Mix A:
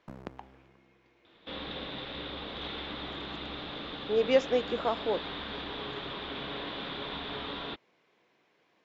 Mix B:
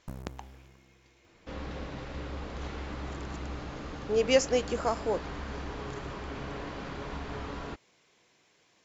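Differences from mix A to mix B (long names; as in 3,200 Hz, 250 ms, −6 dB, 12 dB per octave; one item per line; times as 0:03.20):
speech: add high-shelf EQ 3,200 Hz +9.5 dB
second sound: remove low-pass with resonance 3,600 Hz, resonance Q 10
master: remove three-way crossover with the lows and the highs turned down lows −12 dB, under 160 Hz, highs −19 dB, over 4,900 Hz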